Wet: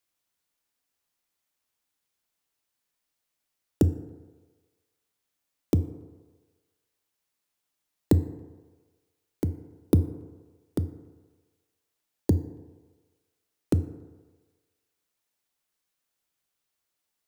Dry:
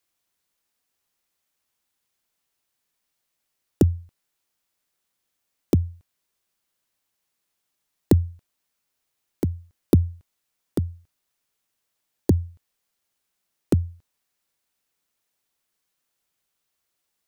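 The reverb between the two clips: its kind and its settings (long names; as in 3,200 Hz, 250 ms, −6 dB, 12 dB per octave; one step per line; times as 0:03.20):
feedback delay network reverb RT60 1.4 s, low-frequency decay 0.75×, high-frequency decay 0.4×, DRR 11 dB
level −4 dB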